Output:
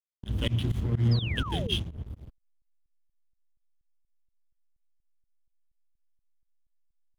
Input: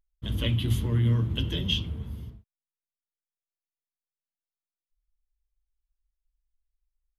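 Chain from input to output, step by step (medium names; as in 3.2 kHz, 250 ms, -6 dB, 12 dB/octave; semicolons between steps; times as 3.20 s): hysteresis with a dead band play -31.5 dBFS; volume shaper 126 bpm, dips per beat 2, -24 dB, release 91 ms; painted sound fall, 1.11–1.76 s, 320–5300 Hz -38 dBFS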